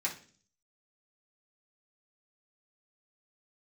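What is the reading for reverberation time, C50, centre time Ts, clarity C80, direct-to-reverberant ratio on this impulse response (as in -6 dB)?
0.45 s, 10.5 dB, 15 ms, 16.5 dB, -6.5 dB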